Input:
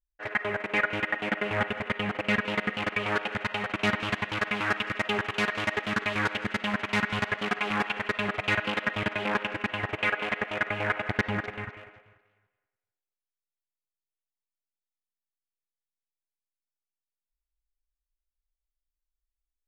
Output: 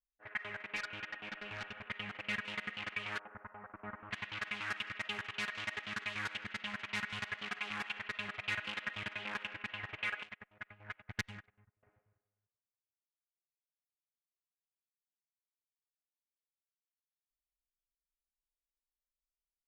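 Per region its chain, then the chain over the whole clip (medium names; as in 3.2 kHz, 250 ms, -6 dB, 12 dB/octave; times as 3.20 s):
0.76–1.89 s: band-stop 2 kHz, Q 7.3 + hard clipper -25 dBFS
3.19–4.11 s: low-pass 1.3 kHz 24 dB/octave + peaking EQ 140 Hz -8 dB 0.97 oct
10.23–11.83 s: tone controls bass +6 dB, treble +11 dB + upward expansion 2.5:1, over -36 dBFS
whole clip: level-controlled noise filter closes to 560 Hz, open at -23.5 dBFS; amplifier tone stack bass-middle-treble 5-5-5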